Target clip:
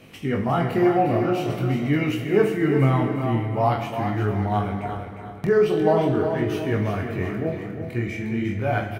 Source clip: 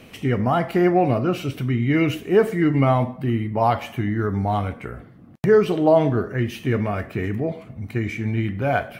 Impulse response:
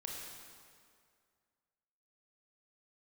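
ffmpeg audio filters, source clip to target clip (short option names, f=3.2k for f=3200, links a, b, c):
-filter_complex "[0:a]asplit=2[a][b];[b]aecho=0:1:356|712|1068|1424:0.422|0.16|0.0609|0.0231[c];[a][c]amix=inputs=2:normalize=0,flanger=delay=19:depth=7:speed=0.45,asplit=2[d][e];[1:a]atrim=start_sample=2205,adelay=45[f];[e][f]afir=irnorm=-1:irlink=0,volume=-6dB[g];[d][g]amix=inputs=2:normalize=0"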